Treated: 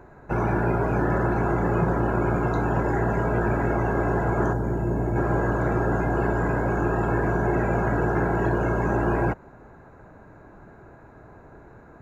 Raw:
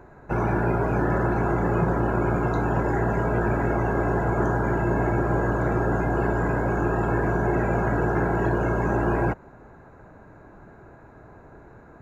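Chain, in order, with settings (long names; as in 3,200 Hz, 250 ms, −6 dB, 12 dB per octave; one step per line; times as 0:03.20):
0:04.53–0:05.16: parametric band 1,900 Hz −11 dB 2.9 octaves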